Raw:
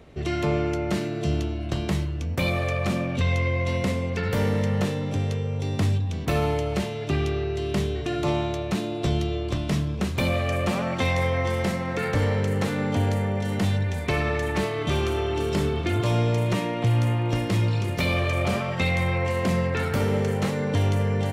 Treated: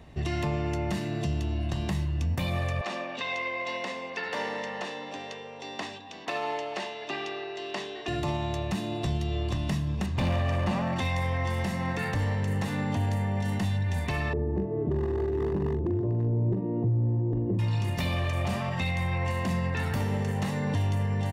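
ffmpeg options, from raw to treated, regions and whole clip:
-filter_complex "[0:a]asettb=1/sr,asplit=3[a][b][c];[a]atrim=end=2.814[d];[b]atrim=start=2.81:end=8.08,asetpts=PTS-STARTPTS,afade=t=in:d=0.004:c=qsin,afade=t=out:st=5.266:d=0.004:c=qsin,highpass=210,acrossover=split=320 6700:gain=0.0708 1 0.0708[e][f][g];[e][f][g]amix=inputs=3:normalize=0[h];[c]atrim=start=8.076[i];[d][h]acrossfade=d=0.004:c1=hsin:c2=qsin[j];[j][i]acrossfade=d=0.004:c1=qsin:c2=hsin,asettb=1/sr,asplit=3[k][l][m];[k]atrim=end=10.064[n];[l]atrim=start=10.06:end=10.96,asetpts=PTS-STARTPTS,afade=t=in:d=0.004:c=qsin,afade=t=out:st=0.896:d=0.004:c=qsin,lowpass=7.5k,highshelf=f=2.4k:g=-6.5,volume=22dB,asoftclip=hard,volume=-22dB[o];[m]atrim=start=10.956[p];[n][o]acrossfade=d=0.004:c1=hsin:c2=qsin[q];[q][p]acrossfade=d=0.004:c1=qsin:c2=hsin,asettb=1/sr,asplit=3[r][s][t];[r]atrim=end=14.334[u];[s]atrim=start=14.33:end=17.59,asetpts=PTS-STARTPTS,afade=t=in:d=0.004:c=qsin,afade=t=out:st=3.256:d=0.004:c=qsin,lowpass=f=400:t=q:w=5,asoftclip=type=hard:threshold=-10.5dB,asplit=2[v][w];[w]adelay=42,volume=-8dB[x];[v][x]amix=inputs=2:normalize=0,atrim=end_sample=143766[y];[t]atrim=start=17.586[z];[u][y]acrossfade=d=0.004:c1=hsin:c2=qsin[aa];[aa][z]acrossfade=d=0.004:c1=qsin:c2=hsin,aecho=1:1:1.1:0.48,alimiter=limit=-19dB:level=0:latency=1:release=180,volume=-1.5dB"

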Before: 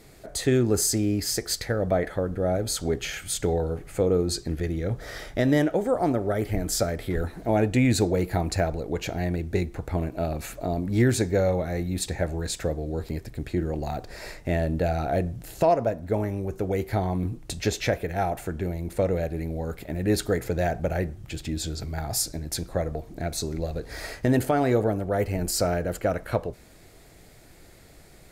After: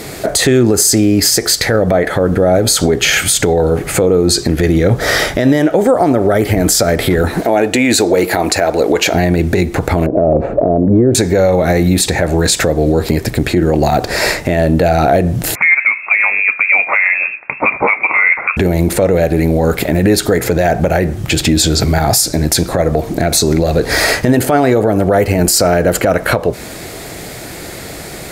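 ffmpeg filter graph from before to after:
-filter_complex "[0:a]asettb=1/sr,asplit=3[a][b][c];[a]atrim=end=7.414[d];[b]atrim=start=7.41:end=9.13,asetpts=PTS-STARTPTS,afade=t=in:d=0.004:c=qsin,afade=t=out:st=1.716:d=0.004:c=qsin,highpass=100,equalizer=f=130:t=o:w=1.4:g=-14[e];[c]atrim=start=9.126[f];[d][e]acrossfade=d=0.004:c1=hsin:c2=qsin[g];[g][f]acrossfade=d=0.004:c1=qsin:c2=hsin,asettb=1/sr,asplit=3[h][i][j];[h]atrim=end=10.064[k];[i]atrim=start=10.06:end=11.15,asetpts=PTS-STARTPTS,afade=t=in:d=0.004:c=qsin,afade=t=out:st=1.086:d=0.004:c=qsin,lowpass=f=550:t=q:w=2.4,acompressor=threshold=-30dB:ratio=3:attack=3.2:release=140:knee=1:detection=peak[l];[j]atrim=start=11.146[m];[k][l]acrossfade=d=0.004:c1=hsin:c2=qsin[n];[n][m]acrossfade=d=0.004:c1=qsin:c2=hsin,asettb=1/sr,asplit=3[o][p][q];[o]atrim=end=15.554[r];[p]atrim=start=15.55:end=18.57,asetpts=PTS-STARTPTS,afade=t=in:d=0.004:c=qsin,afade=t=out:st=3.016:d=0.004:c=qsin,highpass=500,lowpass=f=2.4k:t=q:w=0.5098,lowpass=f=2.4k:t=q:w=0.6013,lowpass=f=2.4k:t=q:w=0.9,lowpass=f=2.4k:t=q:w=2.563,afreqshift=-2800[s];[q]atrim=start=18.566[t];[r][s]acrossfade=d=0.004:c1=hsin:c2=qsin[u];[u][t]acrossfade=d=0.004:c1=qsin:c2=hsin,highpass=f=150:p=1,acompressor=threshold=-31dB:ratio=6,alimiter=level_in=27dB:limit=-1dB:release=50:level=0:latency=1,volume=-1dB"

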